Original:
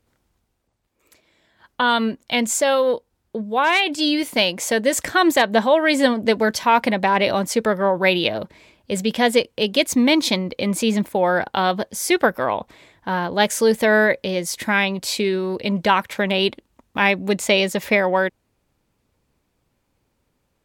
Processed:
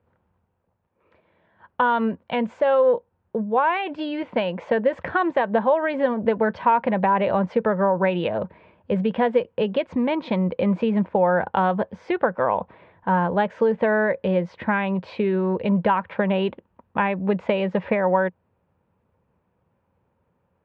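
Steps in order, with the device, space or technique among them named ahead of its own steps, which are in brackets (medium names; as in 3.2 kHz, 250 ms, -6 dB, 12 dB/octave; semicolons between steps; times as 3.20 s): bass amplifier (compression, threshold -18 dBFS, peak gain reduction 8 dB; cabinet simulation 78–2300 Hz, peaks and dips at 86 Hz +7 dB, 180 Hz +6 dB, 290 Hz -6 dB, 510 Hz +5 dB, 940 Hz +5 dB, 2.1 kHz -6 dB)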